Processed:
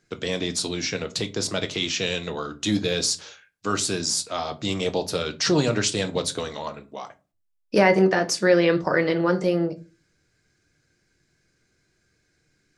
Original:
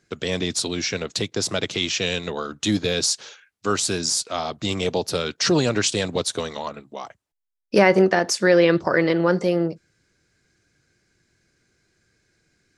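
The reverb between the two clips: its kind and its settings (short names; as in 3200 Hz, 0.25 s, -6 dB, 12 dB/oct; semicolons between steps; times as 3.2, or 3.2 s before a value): shoebox room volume 120 m³, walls furnished, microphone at 0.53 m; gain -2.5 dB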